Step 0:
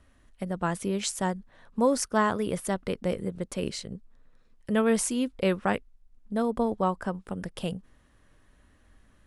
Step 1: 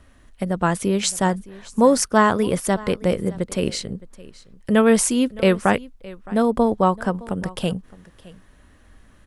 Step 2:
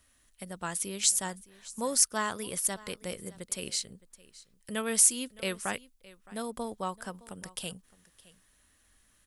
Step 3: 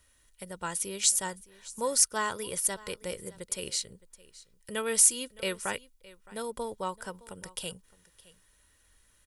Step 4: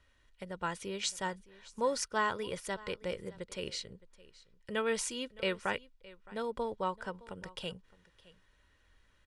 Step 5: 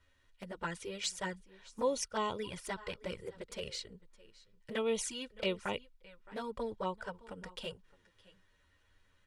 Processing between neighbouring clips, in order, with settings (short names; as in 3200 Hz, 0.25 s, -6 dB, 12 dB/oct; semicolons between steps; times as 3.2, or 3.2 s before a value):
echo 0.615 s -20.5 dB; gain +8.5 dB
pre-emphasis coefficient 0.9
comb 2.1 ms, depth 43%
LPF 3400 Hz 12 dB/oct
envelope flanger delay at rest 11.5 ms, full sweep at -29.5 dBFS; gain +1 dB